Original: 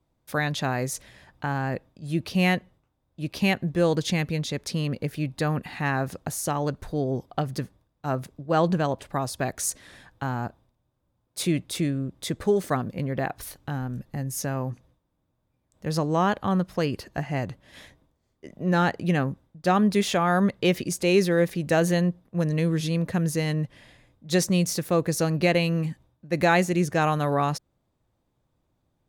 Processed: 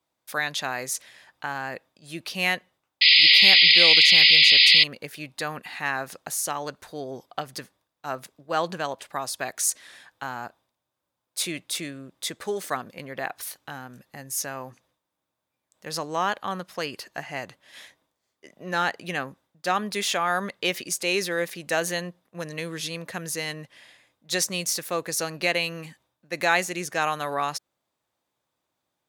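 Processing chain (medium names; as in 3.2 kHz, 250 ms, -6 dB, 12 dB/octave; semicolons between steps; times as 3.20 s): high-pass 1.4 kHz 6 dB/octave; painted sound noise, 3.01–4.84 s, 1.9–5.1 kHz -19 dBFS; trim +4 dB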